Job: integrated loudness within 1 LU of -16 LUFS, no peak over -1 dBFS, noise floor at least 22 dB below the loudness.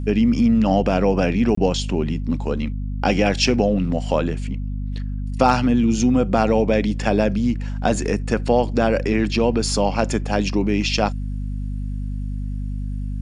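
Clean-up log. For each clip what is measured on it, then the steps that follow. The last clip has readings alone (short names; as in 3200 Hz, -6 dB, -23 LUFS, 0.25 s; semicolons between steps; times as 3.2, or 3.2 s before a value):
dropouts 1; longest dropout 24 ms; hum 50 Hz; harmonics up to 250 Hz; hum level -23 dBFS; loudness -20.5 LUFS; peak -2.0 dBFS; loudness target -16.0 LUFS
-> interpolate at 1.55, 24 ms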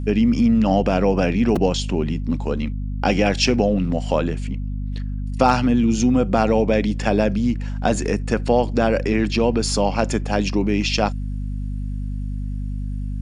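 dropouts 0; hum 50 Hz; harmonics up to 250 Hz; hum level -23 dBFS
-> notches 50/100/150/200/250 Hz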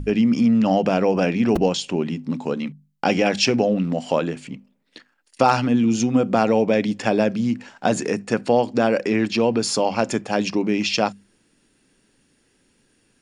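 hum none; loudness -20.5 LUFS; peak -3.5 dBFS; loudness target -16.0 LUFS
-> gain +4.5 dB; limiter -1 dBFS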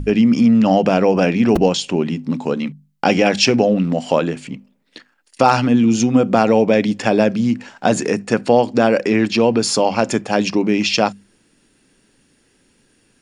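loudness -16.0 LUFS; peak -1.0 dBFS; noise floor -60 dBFS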